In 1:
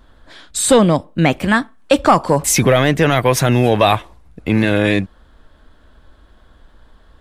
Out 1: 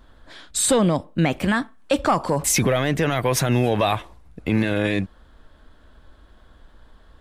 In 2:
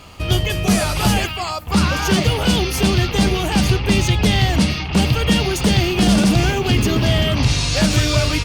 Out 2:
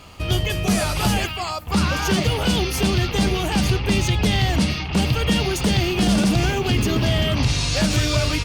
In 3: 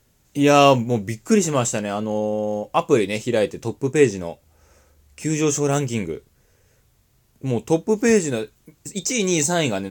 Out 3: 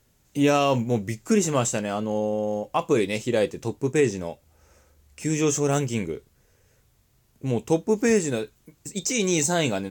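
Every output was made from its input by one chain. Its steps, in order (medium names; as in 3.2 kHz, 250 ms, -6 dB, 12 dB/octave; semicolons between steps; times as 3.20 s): peak limiter -8 dBFS; trim -2.5 dB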